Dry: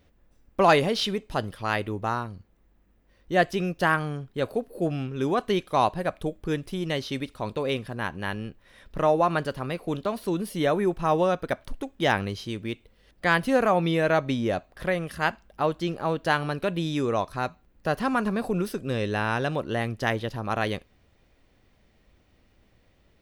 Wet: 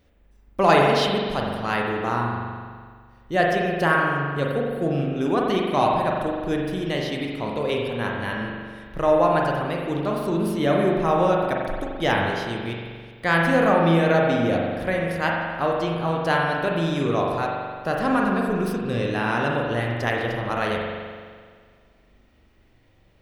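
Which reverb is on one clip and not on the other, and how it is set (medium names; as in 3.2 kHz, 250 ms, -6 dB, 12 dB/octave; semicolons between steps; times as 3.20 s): spring tank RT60 1.8 s, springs 42 ms, chirp 55 ms, DRR -1.5 dB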